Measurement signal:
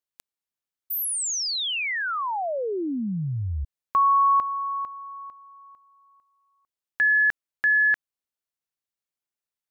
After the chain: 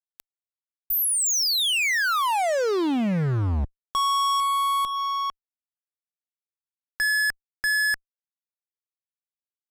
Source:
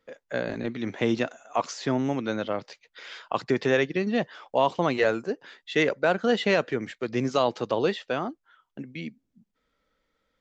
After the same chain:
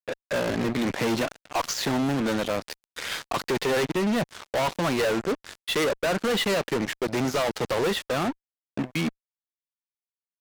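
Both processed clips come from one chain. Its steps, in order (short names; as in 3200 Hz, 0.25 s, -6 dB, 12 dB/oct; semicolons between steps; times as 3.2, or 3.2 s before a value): in parallel at -3 dB: compressor 8:1, threshold -35 dBFS; on the sum: fuzz box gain 34 dB, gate -39 dBFS; gain -8.5 dB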